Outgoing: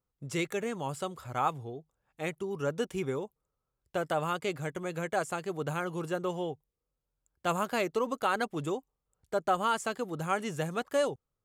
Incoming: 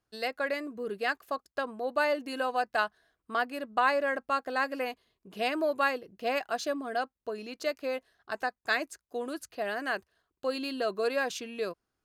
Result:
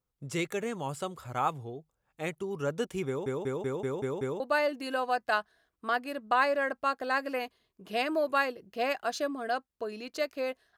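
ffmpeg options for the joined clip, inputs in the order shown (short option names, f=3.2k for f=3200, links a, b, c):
-filter_complex "[0:a]apad=whole_dur=10.77,atrim=end=10.77,asplit=7[a][b][c][d][e][f][g];[a]atrim=end=3.262[h];[b]atrim=start=3.068:end=3.262[i];[c]atrim=start=3.068:end=3.262[j];[d]atrim=start=3.068:end=3.262[k];[e]atrim=start=3.068:end=3.262[l];[f]atrim=start=3.068:end=3.262[m];[g]atrim=start=3.068:end=3.262[n];[1:a]atrim=start=1.858:end=8.23[o];[h][i]acrossfade=d=0.004:c1=hsin:c2=hsin[p];[p][j]acrossfade=d=0.004:c1=hsin:c2=hsin[q];[q][k]acrossfade=d=0.004:c1=hsin:c2=hsin[r];[r][l]acrossfade=d=0.004:c1=hsin:c2=hsin[s];[s][m]acrossfade=d=0.004:c1=hsin:c2=hsin[t];[t][n]acrossfade=d=0.004:c1=hsin:c2=hsin[u];[u][o]acrossfade=d=0.004:c1=hsin:c2=hsin"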